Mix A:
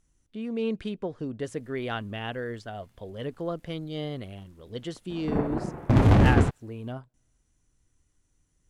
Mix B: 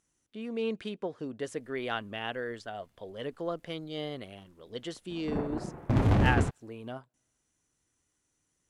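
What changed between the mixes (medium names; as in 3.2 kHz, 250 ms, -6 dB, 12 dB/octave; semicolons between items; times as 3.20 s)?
speech: add high-pass 360 Hz 6 dB/octave; background -6.0 dB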